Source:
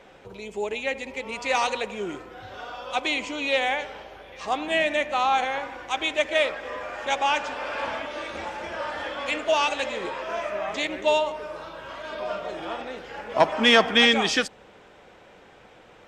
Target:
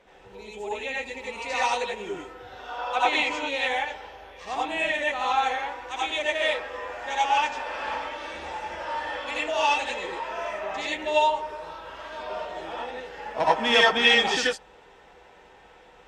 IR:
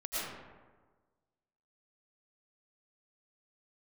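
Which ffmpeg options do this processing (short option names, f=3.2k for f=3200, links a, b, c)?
-filter_complex "[0:a]asettb=1/sr,asplit=3[a][b][c];[a]atrim=end=2.694[d];[b]atrim=start=2.69:end=3.39,asetpts=PTS-STARTPTS,afade=t=in:d=0.004:c=qsin,afade=t=out:st=0.696:d=0.004:c=qsin,equalizer=f=1.1k:t=o:w=2.2:g=9[e];[c]atrim=start=3.386[f];[d][e]acrossfade=d=0.004:c1=hsin:c2=qsin[g];[g][f]acrossfade=d=0.004:c1=qsin:c2=hsin[h];[1:a]atrim=start_sample=2205,atrim=end_sample=6615,asetrate=61740,aresample=44100[i];[h][i]afir=irnorm=-1:irlink=0"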